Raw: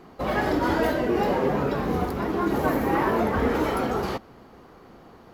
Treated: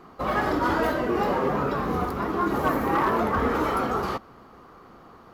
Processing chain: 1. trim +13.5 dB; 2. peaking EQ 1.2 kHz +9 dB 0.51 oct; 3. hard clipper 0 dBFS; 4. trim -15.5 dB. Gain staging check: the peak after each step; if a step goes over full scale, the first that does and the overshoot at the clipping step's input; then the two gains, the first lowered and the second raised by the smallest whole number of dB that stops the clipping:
+2.0 dBFS, +4.0 dBFS, 0.0 dBFS, -15.5 dBFS; step 1, 4.0 dB; step 1 +9.5 dB, step 4 -11.5 dB

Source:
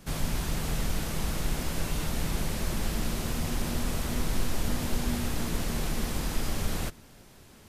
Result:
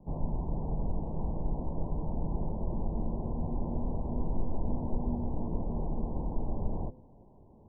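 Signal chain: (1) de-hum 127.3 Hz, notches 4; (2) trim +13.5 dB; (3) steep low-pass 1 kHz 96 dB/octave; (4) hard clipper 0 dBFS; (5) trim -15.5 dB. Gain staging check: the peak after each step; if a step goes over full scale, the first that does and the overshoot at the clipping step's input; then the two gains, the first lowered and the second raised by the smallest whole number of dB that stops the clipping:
-15.5 dBFS, -2.0 dBFS, -2.5 dBFS, -2.5 dBFS, -18.0 dBFS; nothing clips

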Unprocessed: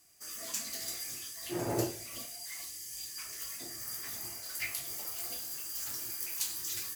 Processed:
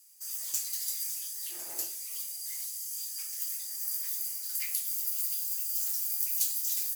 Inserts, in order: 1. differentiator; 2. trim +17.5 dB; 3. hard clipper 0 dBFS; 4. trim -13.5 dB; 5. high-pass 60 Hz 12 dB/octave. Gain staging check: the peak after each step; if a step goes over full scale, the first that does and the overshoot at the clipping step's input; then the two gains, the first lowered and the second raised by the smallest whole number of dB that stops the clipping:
-14.5 dBFS, +3.0 dBFS, 0.0 dBFS, -13.5 dBFS, -13.5 dBFS; step 2, 3.0 dB; step 2 +14.5 dB, step 4 -10.5 dB

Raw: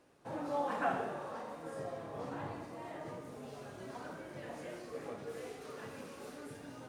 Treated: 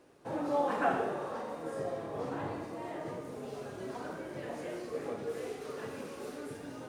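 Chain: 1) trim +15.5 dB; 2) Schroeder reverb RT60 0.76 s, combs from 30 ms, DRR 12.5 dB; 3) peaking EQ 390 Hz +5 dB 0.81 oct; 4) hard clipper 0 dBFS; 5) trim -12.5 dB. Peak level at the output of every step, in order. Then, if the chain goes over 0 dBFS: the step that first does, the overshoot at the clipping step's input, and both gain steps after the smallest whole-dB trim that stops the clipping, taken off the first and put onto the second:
-6.5 dBFS, -5.5 dBFS, -4.5 dBFS, -4.5 dBFS, -17.0 dBFS; nothing clips

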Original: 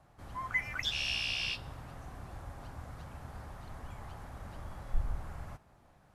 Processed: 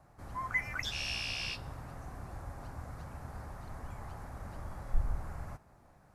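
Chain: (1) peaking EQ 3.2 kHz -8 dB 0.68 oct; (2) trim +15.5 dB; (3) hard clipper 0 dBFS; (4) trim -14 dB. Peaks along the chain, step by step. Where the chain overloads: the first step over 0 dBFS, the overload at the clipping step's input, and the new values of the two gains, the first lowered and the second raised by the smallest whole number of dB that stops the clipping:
-18.5 dBFS, -3.0 dBFS, -3.0 dBFS, -17.0 dBFS; nothing clips

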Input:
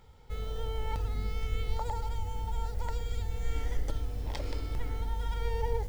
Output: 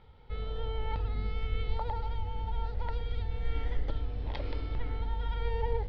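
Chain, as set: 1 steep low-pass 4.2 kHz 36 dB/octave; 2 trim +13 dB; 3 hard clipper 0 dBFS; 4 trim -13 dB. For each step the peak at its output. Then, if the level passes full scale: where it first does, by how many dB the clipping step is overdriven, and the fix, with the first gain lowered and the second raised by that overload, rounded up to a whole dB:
-18.5 dBFS, -5.5 dBFS, -5.5 dBFS, -18.5 dBFS; nothing clips

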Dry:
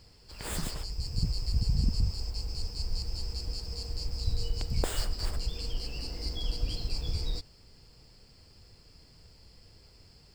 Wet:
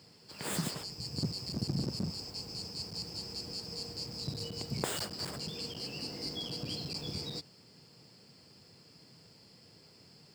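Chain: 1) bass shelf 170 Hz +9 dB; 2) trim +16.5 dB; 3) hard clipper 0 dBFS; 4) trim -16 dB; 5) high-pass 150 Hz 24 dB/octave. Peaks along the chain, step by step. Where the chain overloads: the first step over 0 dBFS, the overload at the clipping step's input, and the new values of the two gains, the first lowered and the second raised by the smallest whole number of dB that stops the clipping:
-8.5 dBFS, +8.0 dBFS, 0.0 dBFS, -16.0 dBFS, -14.5 dBFS; step 2, 8.0 dB; step 2 +8.5 dB, step 4 -8 dB

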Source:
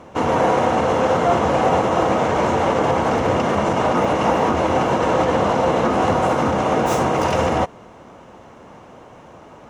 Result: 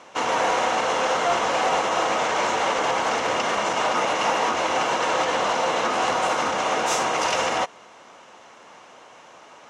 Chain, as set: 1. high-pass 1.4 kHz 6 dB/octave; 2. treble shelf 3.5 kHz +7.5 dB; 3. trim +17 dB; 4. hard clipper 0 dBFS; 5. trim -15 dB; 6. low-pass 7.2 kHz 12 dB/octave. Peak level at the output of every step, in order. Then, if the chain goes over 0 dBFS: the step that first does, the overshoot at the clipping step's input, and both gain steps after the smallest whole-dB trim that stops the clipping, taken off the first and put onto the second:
-12.0 dBFS, -11.0 dBFS, +6.0 dBFS, 0.0 dBFS, -15.0 dBFS, -14.0 dBFS; step 3, 6.0 dB; step 3 +11 dB, step 5 -9 dB

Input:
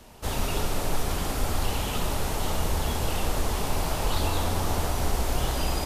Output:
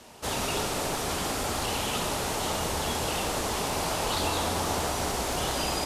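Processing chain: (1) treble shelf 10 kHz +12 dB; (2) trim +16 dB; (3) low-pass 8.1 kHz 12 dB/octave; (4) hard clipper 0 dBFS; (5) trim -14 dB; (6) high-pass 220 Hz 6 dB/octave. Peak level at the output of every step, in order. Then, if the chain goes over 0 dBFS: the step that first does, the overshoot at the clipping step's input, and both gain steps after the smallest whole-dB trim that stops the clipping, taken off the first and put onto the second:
-12.0 dBFS, +4.0 dBFS, +3.5 dBFS, 0.0 dBFS, -14.0 dBFS, -16.0 dBFS; step 2, 3.5 dB; step 2 +12 dB, step 5 -10 dB

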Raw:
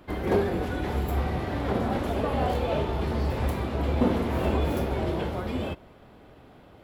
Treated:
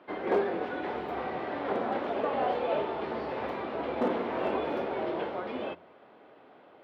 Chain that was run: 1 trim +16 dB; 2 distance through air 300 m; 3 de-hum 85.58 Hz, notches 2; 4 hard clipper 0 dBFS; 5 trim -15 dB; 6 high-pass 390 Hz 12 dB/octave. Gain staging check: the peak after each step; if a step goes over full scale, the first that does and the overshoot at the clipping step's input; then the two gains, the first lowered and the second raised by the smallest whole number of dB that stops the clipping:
+4.5 dBFS, +4.0 dBFS, +4.0 dBFS, 0.0 dBFS, -15.0 dBFS, -15.5 dBFS; step 1, 4.0 dB; step 1 +12 dB, step 5 -11 dB

